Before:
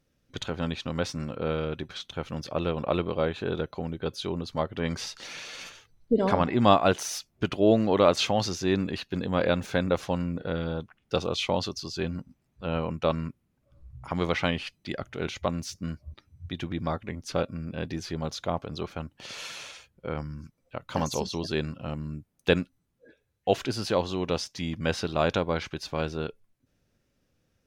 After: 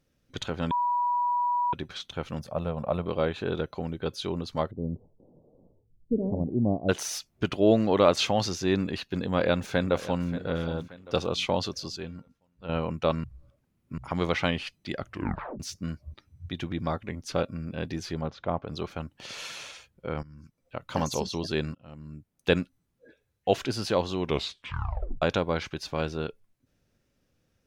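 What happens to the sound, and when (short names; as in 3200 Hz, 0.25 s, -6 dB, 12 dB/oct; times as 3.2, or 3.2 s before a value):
0.71–1.73 bleep 973 Hz -23 dBFS
2.39–3.06 EQ curve 220 Hz 0 dB, 310 Hz -13 dB, 620 Hz +1 dB, 3000 Hz -12 dB, 5300 Hz -10 dB, 9700 Hz +1 dB
4.71–6.89 Gaussian blur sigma 18 samples
9.18–10.29 echo throw 0.58 s, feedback 45%, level -15 dB
11.96–12.69 resonator 460 Hz, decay 0.37 s
13.24–13.98 reverse
15.06 tape stop 0.54 s
18.21–18.68 LPF 2100 Hz
20.23–20.76 fade in, from -16 dB
21.75–22.59 fade in linear, from -24 dB
24.21 tape stop 1.01 s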